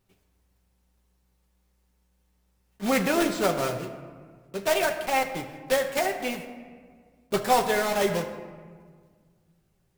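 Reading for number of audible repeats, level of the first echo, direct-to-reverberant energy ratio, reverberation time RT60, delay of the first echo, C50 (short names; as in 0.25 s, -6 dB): none, none, 2.0 dB, 1.7 s, none, 9.0 dB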